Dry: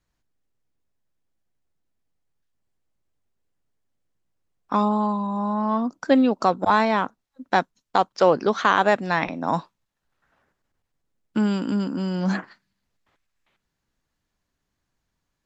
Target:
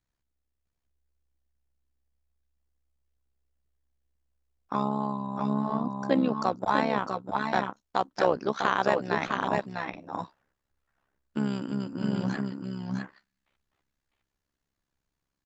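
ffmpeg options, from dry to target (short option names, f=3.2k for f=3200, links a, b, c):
-af "aecho=1:1:651|661:0.501|0.422,tremolo=f=67:d=0.788,volume=-4dB"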